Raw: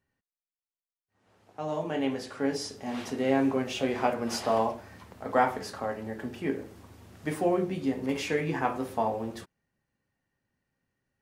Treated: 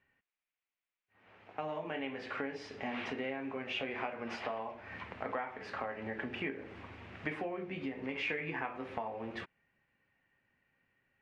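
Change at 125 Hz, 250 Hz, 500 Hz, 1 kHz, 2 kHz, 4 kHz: -11.0 dB, -11.5 dB, -11.0 dB, -10.5 dB, -2.0 dB, -6.5 dB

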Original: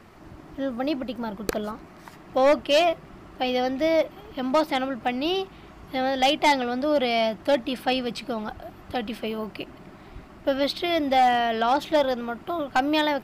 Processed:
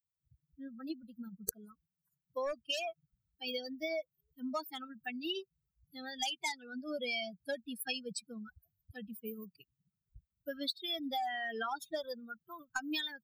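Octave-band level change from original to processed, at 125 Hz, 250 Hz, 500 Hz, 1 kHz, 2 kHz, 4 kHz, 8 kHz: -17.5 dB, -16.5 dB, -18.5 dB, -19.0 dB, -12.0 dB, -10.0 dB, -4.5 dB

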